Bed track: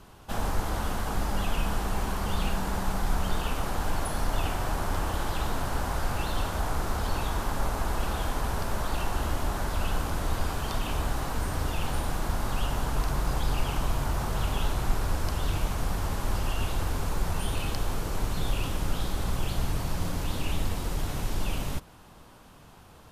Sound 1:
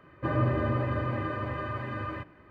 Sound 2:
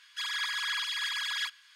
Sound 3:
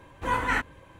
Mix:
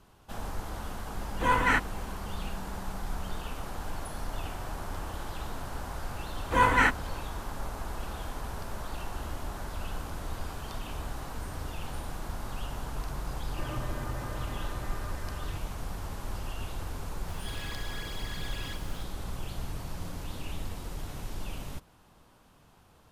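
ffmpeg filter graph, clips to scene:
ffmpeg -i bed.wav -i cue0.wav -i cue1.wav -i cue2.wav -filter_complex "[3:a]asplit=2[link_01][link_02];[0:a]volume=-8dB[link_03];[link_01]acontrast=66[link_04];[link_02]dynaudnorm=framelen=100:gausssize=3:maxgain=13dB[link_05];[1:a]equalizer=frequency=1700:width=1.5:gain=4[link_06];[2:a]aeval=exprs='val(0)+0.5*0.0178*sgn(val(0))':channel_layout=same[link_07];[link_04]atrim=end=0.99,asetpts=PTS-STARTPTS,volume=-5dB,afade=type=in:duration=0.004:curve=hsin,afade=type=out:start_time=0.986:duration=0.004:curve=hsin,adelay=1180[link_08];[link_05]atrim=end=0.99,asetpts=PTS-STARTPTS,volume=-7.5dB,afade=type=in:duration=0.004:curve=hsin,afade=type=out:start_time=0.986:duration=0.004:curve=hsin,adelay=6290[link_09];[link_06]atrim=end=2.5,asetpts=PTS-STARTPTS,volume=-12.5dB,afade=type=in:duration=0.004:curve=hsin,afade=type=out:start_time=2.496:duration=0.004:curve=hsin,adelay=13340[link_10];[link_07]atrim=end=1.75,asetpts=PTS-STARTPTS,volume=-13.5dB,afade=type=in:duration=0.004:curve=hsin,afade=type=out:start_time=1.746:duration=0.004:curve=hsin,adelay=17280[link_11];[link_03][link_08][link_09][link_10][link_11]amix=inputs=5:normalize=0" out.wav

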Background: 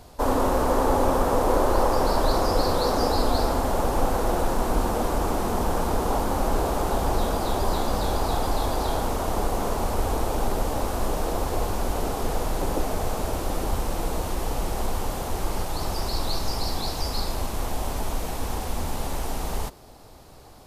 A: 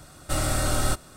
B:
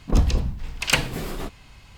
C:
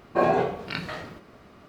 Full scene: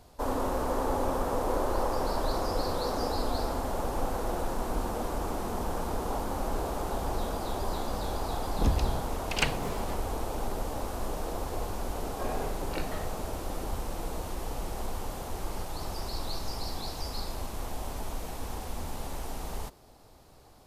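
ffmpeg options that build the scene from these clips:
ffmpeg -i bed.wav -i cue0.wav -i cue1.wav -i cue2.wav -filter_complex "[0:a]volume=-8dB[link_01];[2:a]highshelf=frequency=9900:gain=-10.5[link_02];[3:a]dynaudnorm=framelen=140:gausssize=5:maxgain=10dB[link_03];[link_02]atrim=end=1.97,asetpts=PTS-STARTPTS,volume=-7.5dB,afade=type=in:duration=0.004:curve=hsin,afade=type=out:start_time=1.966:duration=0.004:curve=hsin,adelay=8490[link_04];[link_03]atrim=end=1.68,asetpts=PTS-STARTPTS,volume=-17.5dB,afade=type=in:duration=0.004:curve=hsin,afade=type=out:start_time=1.676:duration=0.004:curve=hsin,adelay=12030[link_05];[link_01][link_04][link_05]amix=inputs=3:normalize=0" out.wav

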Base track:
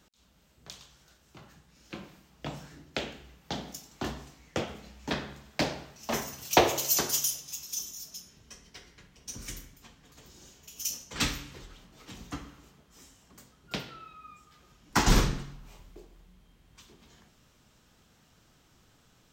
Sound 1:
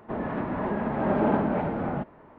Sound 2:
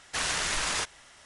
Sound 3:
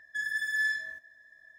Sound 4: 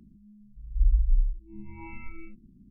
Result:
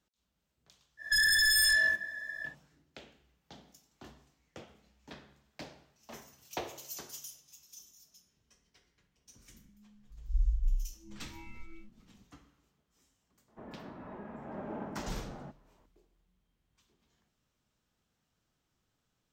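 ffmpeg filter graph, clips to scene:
ffmpeg -i bed.wav -i cue0.wav -i cue1.wav -i cue2.wav -i cue3.wav -filter_complex "[0:a]volume=-17.5dB[link_01];[3:a]aeval=exprs='0.0841*sin(PI/2*4.47*val(0)/0.0841)':channel_layout=same,atrim=end=1.58,asetpts=PTS-STARTPTS,volume=-1dB,afade=type=in:duration=0.1,afade=type=out:start_time=1.48:duration=0.1,adelay=970[link_02];[4:a]atrim=end=2.7,asetpts=PTS-STARTPTS,volume=-7.5dB,afade=type=in:duration=0.004:curve=hsin,afade=type=out:start_time=2.696:duration=0.004:curve=hsin,adelay=420714S[link_03];[1:a]atrim=end=2.38,asetpts=PTS-STARTPTS,volume=-17.5dB,afade=type=in:duration=0.004:curve=hsin,afade=type=out:start_time=2.376:duration=0.004:curve=hsin,adelay=594468S[link_04];[link_01][link_02][link_03][link_04]amix=inputs=4:normalize=0" out.wav

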